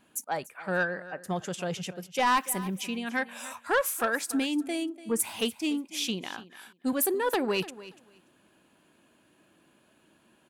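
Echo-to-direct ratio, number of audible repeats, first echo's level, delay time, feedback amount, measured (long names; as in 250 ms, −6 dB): −17.0 dB, 2, −17.0 dB, 290 ms, 17%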